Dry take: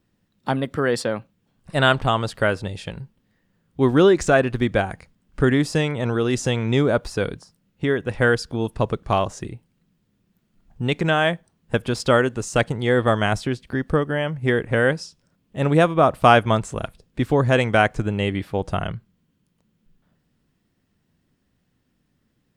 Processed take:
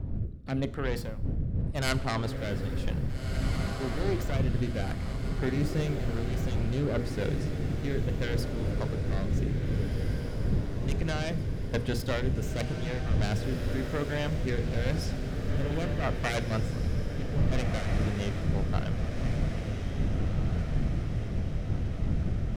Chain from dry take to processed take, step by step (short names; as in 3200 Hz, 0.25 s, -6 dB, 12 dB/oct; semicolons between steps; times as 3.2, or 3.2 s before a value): self-modulated delay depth 0.37 ms; wind noise 130 Hz -18 dBFS; low shelf 190 Hz +5 dB; notches 60/120/180/240/300/360/420/480 Hz; reverse; compressor 6:1, threshold -26 dBFS, peak gain reduction 26.5 dB; reverse; rotary speaker horn 0.9 Hz, later 6 Hz, at 14.94; tempo 1×; on a send: diffused feedback echo 1.723 s, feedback 61%, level -5.5 dB; on the sum: Schroeder reverb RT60 0.76 s, combs from 27 ms, DRR 16.5 dB